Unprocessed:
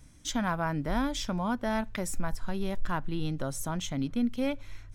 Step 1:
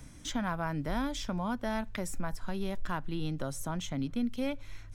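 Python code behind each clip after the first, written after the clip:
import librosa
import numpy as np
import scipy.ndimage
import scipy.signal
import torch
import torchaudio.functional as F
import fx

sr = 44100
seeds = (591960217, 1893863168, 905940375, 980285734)

y = fx.band_squash(x, sr, depth_pct=40)
y = y * 10.0 ** (-3.5 / 20.0)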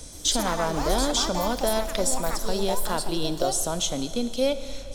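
y = fx.graphic_eq_10(x, sr, hz=(125, 250, 500, 1000, 2000, 4000, 8000), db=(-10, -5, 8, -3, -9, 9, 8))
y = fx.echo_pitch(y, sr, ms=126, semitones=5, count=2, db_per_echo=-6.0)
y = fx.rev_schroeder(y, sr, rt60_s=3.1, comb_ms=27, drr_db=11.0)
y = y * 10.0 ** (8.5 / 20.0)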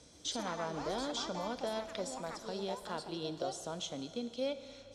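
y = fx.bandpass_edges(x, sr, low_hz=100.0, high_hz=5200.0)
y = fx.comb_fb(y, sr, f0_hz=470.0, decay_s=0.33, harmonics='odd', damping=0.0, mix_pct=60)
y = y * 10.0 ** (-4.5 / 20.0)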